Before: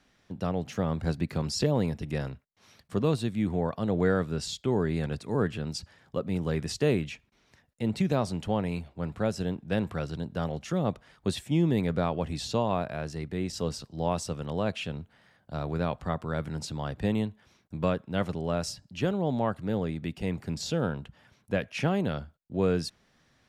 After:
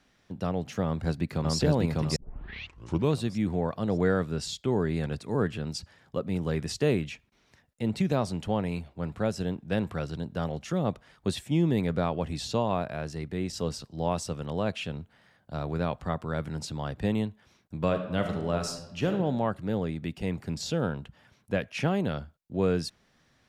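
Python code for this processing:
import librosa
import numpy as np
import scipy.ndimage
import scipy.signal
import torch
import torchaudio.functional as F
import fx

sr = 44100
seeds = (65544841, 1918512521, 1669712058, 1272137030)

y = fx.echo_throw(x, sr, start_s=0.84, length_s=0.73, ms=600, feedback_pct=35, wet_db=0.0)
y = fx.reverb_throw(y, sr, start_s=17.84, length_s=1.28, rt60_s=0.97, drr_db=5.5)
y = fx.edit(y, sr, fx.tape_start(start_s=2.16, length_s=0.97), tone=tone)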